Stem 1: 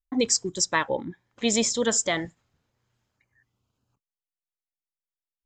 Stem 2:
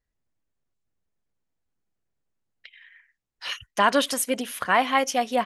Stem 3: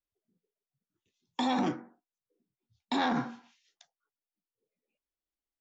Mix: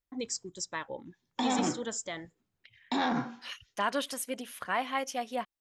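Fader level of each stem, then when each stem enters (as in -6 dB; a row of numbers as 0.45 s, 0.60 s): -13.0 dB, -10.5 dB, -0.5 dB; 0.00 s, 0.00 s, 0.00 s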